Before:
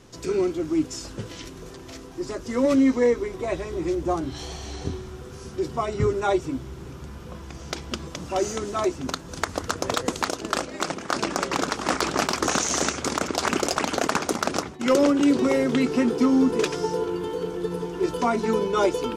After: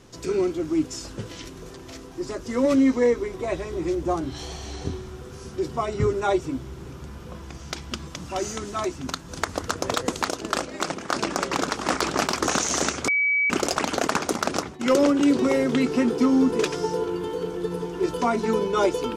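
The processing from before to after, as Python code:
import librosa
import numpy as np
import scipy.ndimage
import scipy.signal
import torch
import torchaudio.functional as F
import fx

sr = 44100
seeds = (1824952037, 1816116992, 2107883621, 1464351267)

y = fx.peak_eq(x, sr, hz=480.0, db=-5.5, octaves=1.3, at=(7.57, 9.3))
y = fx.edit(y, sr, fx.bleep(start_s=13.08, length_s=0.42, hz=2280.0, db=-18.5), tone=tone)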